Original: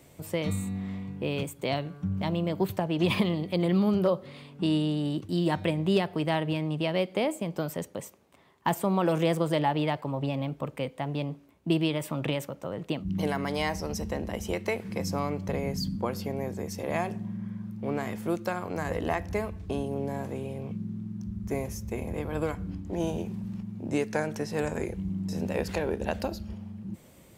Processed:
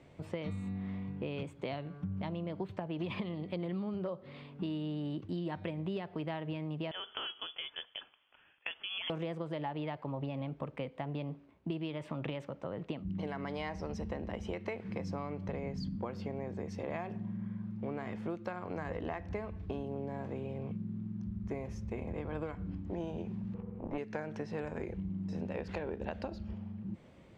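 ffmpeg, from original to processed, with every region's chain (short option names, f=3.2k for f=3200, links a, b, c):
-filter_complex "[0:a]asettb=1/sr,asplit=3[a][b][c];[a]atrim=end=6.914[d];[b]atrim=start=6.91:end=9.1,asetpts=PTS-STARTPTS,afade=t=in:d=0.004:c=qsin,afade=t=out:st=2.186:d=0.004:c=qsin,aemphasis=mode=production:type=riaa,acompressor=threshold=-28dB:ratio=6:attack=3.2:release=140:knee=1:detection=peak,lowpass=f=3.1k:t=q:w=0.5098,lowpass=f=3.1k:t=q:w=0.6013,lowpass=f=3.1k:t=q:w=0.9,lowpass=f=3.1k:t=q:w=2.563,afreqshift=-3600[e];[c]atrim=start=9.096[f];[d][e]acrossfade=d=0.004:c1=hsin:c2=qsin[g];[g][f]acrossfade=d=0.004:c1=qsin:c2=hsin,asettb=1/sr,asplit=3[h][i][j];[h]atrim=end=23.544[k];[i]atrim=start=23.54:end=23.98,asetpts=PTS-STARTPTS,afade=t=in:d=0.004:c=qsin,afade=t=out:st=0.436:d=0.004:c=qsin,equalizer=f=860:w=1:g=9.5,tremolo=f=280:d=0.824,lowpass=2.8k[l];[j]atrim=start=23.976[m];[k][l]acrossfade=d=0.004:c1=hsin:c2=qsin[n];[n][m]acrossfade=d=0.004:c1=qsin:c2=hsin,lowpass=3.1k,acompressor=threshold=-32dB:ratio=6,volume=-2.5dB"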